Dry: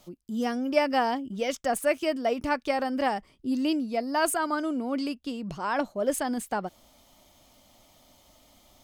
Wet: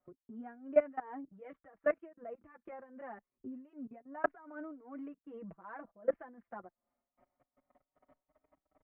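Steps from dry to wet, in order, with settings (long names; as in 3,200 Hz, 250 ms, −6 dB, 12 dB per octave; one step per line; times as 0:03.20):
Butterworth low-pass 1,900 Hz 36 dB per octave
low-shelf EQ 190 Hz −10 dB
notch filter 880 Hz, Q 15
0:01.91–0:04.24: downward compressor 20 to 1, threshold −29 dBFS, peak gain reduction 9 dB
transient designer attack +4 dB, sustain −4 dB
output level in coarse steps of 21 dB
amplitude tremolo 2.6 Hz, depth 77%
barber-pole flanger 5.1 ms +0.27 Hz
level +1 dB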